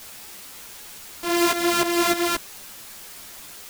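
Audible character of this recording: a buzz of ramps at a fixed pitch in blocks of 128 samples; tremolo saw up 3.3 Hz, depth 80%; a quantiser's noise floor 8-bit, dither triangular; a shimmering, thickened sound

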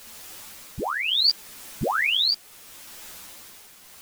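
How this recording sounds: a quantiser's noise floor 8-bit, dither triangular; tremolo triangle 0.73 Hz, depth 65%; a shimmering, thickened sound

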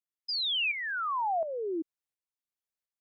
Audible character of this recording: tremolo saw up 1.4 Hz, depth 65%

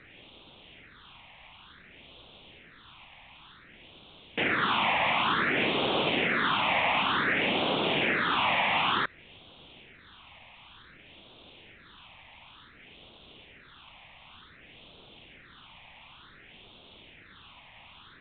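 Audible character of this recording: a quantiser's noise floor 8-bit, dither triangular; phasing stages 6, 0.55 Hz, lowest notch 380–1800 Hz; G.726

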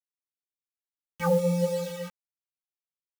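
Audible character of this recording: random-step tremolo 3.7 Hz; a quantiser's noise floor 8-bit, dither none; a shimmering, thickened sound

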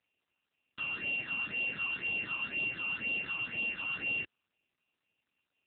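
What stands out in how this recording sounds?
a buzz of ramps at a fixed pitch in blocks of 16 samples; phasing stages 8, 2 Hz, lowest notch 530–1500 Hz; AMR-NB

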